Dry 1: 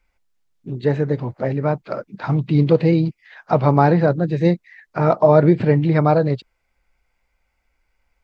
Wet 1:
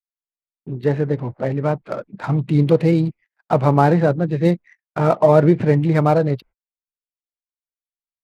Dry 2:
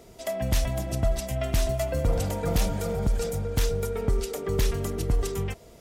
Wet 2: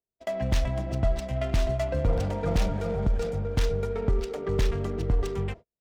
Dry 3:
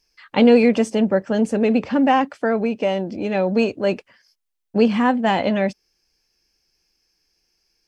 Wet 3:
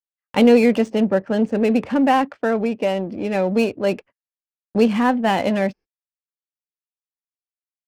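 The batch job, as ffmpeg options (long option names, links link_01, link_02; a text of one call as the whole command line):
ffmpeg -i in.wav -af "adynamicsmooth=sensitivity=6.5:basefreq=1700,agate=range=-47dB:threshold=-39dB:ratio=16:detection=peak" out.wav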